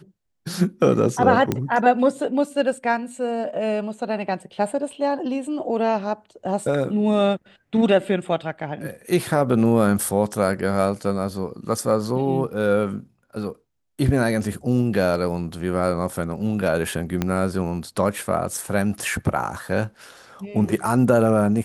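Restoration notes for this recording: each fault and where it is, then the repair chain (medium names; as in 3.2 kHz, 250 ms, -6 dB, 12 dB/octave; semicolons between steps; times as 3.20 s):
1.52 s: pop -8 dBFS
17.22 s: pop -9 dBFS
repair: de-click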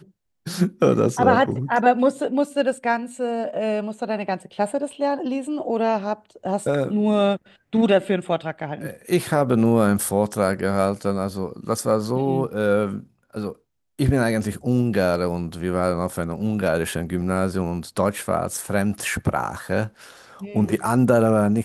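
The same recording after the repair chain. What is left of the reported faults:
17.22 s: pop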